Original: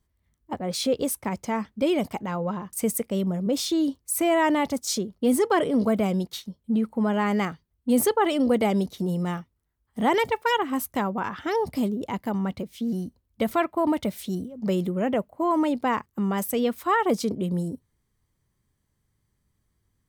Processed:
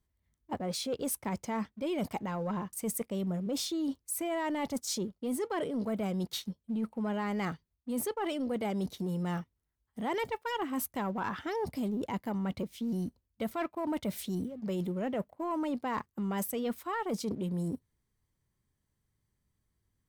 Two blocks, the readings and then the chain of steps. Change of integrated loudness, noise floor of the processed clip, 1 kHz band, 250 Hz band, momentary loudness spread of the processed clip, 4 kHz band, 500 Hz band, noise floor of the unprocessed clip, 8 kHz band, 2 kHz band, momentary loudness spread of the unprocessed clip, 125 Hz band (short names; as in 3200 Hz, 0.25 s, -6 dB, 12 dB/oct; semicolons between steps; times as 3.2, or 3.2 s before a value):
-9.0 dB, -82 dBFS, -10.0 dB, -9.0 dB, 4 LU, -8.0 dB, -10.0 dB, -75 dBFS, -7.0 dB, -10.0 dB, 8 LU, -6.5 dB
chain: notch 1200 Hz, Q 26; reverse; compressor 10:1, threshold -29 dBFS, peak gain reduction 13 dB; reverse; sample leveller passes 1; gain -4.5 dB